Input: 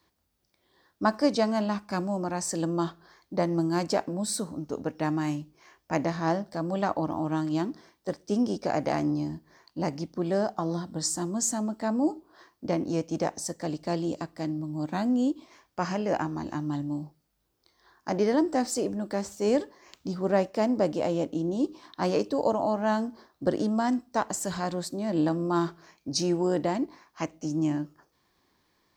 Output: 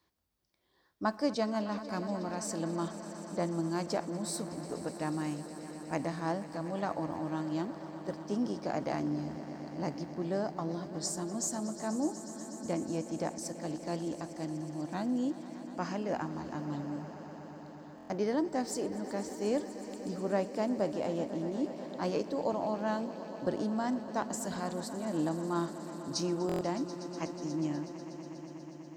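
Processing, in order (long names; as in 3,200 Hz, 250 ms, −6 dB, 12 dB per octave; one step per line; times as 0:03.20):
on a send: echo that builds up and dies away 122 ms, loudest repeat 5, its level −17 dB
on the sum: buffer that repeats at 0:17.96/0:26.47, samples 1,024, times 5
level −7 dB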